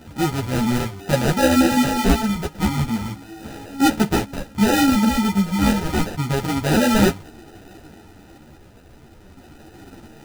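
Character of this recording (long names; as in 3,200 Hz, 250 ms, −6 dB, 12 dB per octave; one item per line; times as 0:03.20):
phaser sweep stages 6, 0.31 Hz, lowest notch 440–3,100 Hz
aliases and images of a low sample rate 1,100 Hz, jitter 0%
a shimmering, thickened sound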